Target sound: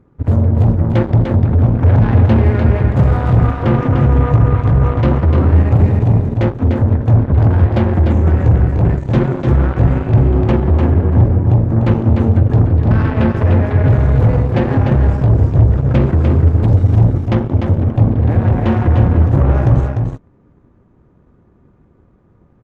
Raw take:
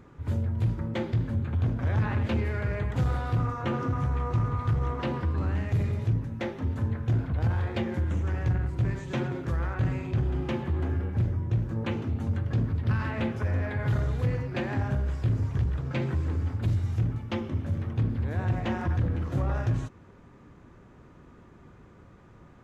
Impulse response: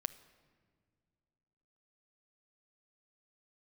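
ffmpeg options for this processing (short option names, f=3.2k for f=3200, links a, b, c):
-filter_complex "[0:a]tiltshelf=f=1.2k:g=7.5,asplit=2[a][b];[b]alimiter=limit=-18dB:level=0:latency=1:release=435,volume=-1dB[c];[a][c]amix=inputs=2:normalize=0,acontrast=62,aeval=exprs='0.708*(cos(1*acos(clip(val(0)/0.708,-1,1)))-cos(1*PI/2))+0.0891*(cos(7*acos(clip(val(0)/0.708,-1,1)))-cos(7*PI/2))':c=same,aecho=1:1:298:0.562,volume=-1dB"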